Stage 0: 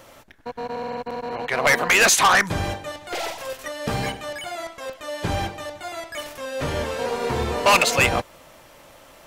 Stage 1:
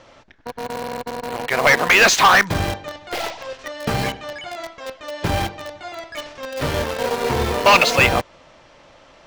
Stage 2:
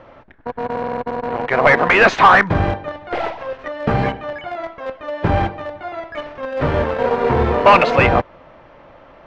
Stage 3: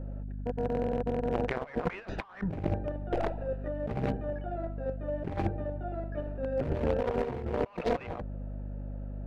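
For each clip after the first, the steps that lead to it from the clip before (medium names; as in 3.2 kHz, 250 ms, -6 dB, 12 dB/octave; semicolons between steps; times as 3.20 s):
low-pass 5.9 kHz 24 dB/octave; in parallel at -5.5 dB: bit crusher 4-bit
low-pass 1.7 kHz 12 dB/octave; in parallel at -9.5 dB: saturation -16 dBFS, distortion -10 dB; on the sum: trim +3 dB
local Wiener filter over 41 samples; hum 50 Hz, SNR 15 dB; compressor with a negative ratio -22 dBFS, ratio -0.5; trim -8.5 dB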